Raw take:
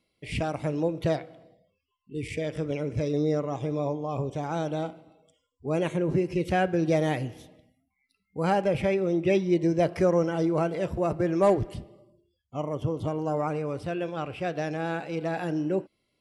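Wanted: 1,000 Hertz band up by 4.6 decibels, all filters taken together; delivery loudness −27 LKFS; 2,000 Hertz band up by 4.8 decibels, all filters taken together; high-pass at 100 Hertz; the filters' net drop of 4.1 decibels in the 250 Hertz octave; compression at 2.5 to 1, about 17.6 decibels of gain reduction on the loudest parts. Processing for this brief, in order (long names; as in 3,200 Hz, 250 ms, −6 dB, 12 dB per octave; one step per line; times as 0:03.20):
high-pass filter 100 Hz
parametric band 250 Hz −7.5 dB
parametric band 1,000 Hz +6.5 dB
parametric band 2,000 Hz +4 dB
downward compressor 2.5 to 1, threshold −44 dBFS
level +14.5 dB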